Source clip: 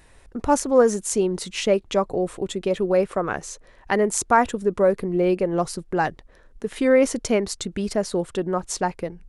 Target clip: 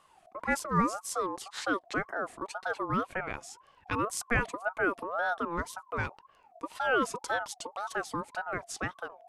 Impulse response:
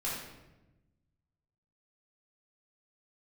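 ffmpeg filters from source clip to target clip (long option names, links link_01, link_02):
-af "atempo=1,aeval=exprs='val(0)*sin(2*PI*900*n/s+900*0.25/1.9*sin(2*PI*1.9*n/s))':channel_layout=same,volume=-8dB"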